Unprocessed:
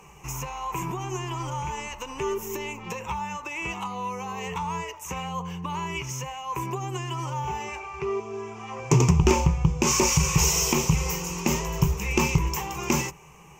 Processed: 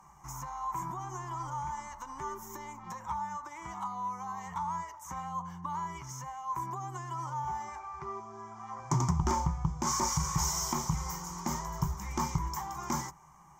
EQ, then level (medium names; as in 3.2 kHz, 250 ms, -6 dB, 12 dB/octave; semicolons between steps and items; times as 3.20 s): tone controls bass -7 dB, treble +2 dB; treble shelf 5.5 kHz -11.5 dB; static phaser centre 1.1 kHz, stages 4; -2.5 dB